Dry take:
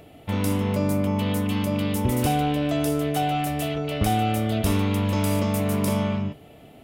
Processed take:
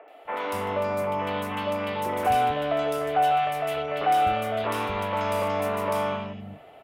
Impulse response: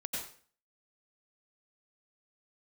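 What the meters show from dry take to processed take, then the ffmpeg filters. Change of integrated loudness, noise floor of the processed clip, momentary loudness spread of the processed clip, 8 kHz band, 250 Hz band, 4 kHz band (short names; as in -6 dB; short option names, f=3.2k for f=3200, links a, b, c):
-2.0 dB, -49 dBFS, 8 LU, -10.0 dB, -12.0 dB, -3.0 dB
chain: -filter_complex "[0:a]acrossover=split=500 2700:gain=0.1 1 0.141[a][b][c];[a][b][c]amix=inputs=3:normalize=0,acrossover=split=290|2400[d][e][f];[f]adelay=80[g];[d]adelay=250[h];[h][e][g]amix=inputs=3:normalize=0,volume=6.5dB"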